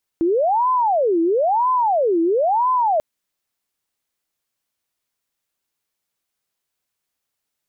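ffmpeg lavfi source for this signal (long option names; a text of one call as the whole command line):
ffmpeg -f lavfi -i "aevalsrc='0.188*sin(2*PI*(674.5*t-345.5/(2*PI*1)*sin(2*PI*1*t)))':duration=2.79:sample_rate=44100" out.wav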